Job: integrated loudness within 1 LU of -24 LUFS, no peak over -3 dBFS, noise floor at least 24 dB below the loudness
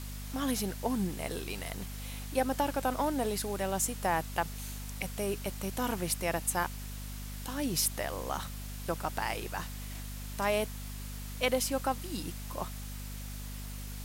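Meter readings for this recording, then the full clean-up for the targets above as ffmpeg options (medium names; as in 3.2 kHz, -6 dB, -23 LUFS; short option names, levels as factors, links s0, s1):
hum 50 Hz; highest harmonic 250 Hz; hum level -39 dBFS; noise floor -41 dBFS; noise floor target -59 dBFS; loudness -34.5 LUFS; peak level -15.0 dBFS; loudness target -24.0 LUFS
-> -af "bandreject=f=50:t=h:w=4,bandreject=f=100:t=h:w=4,bandreject=f=150:t=h:w=4,bandreject=f=200:t=h:w=4,bandreject=f=250:t=h:w=4"
-af "afftdn=nr=18:nf=-41"
-af "volume=3.35"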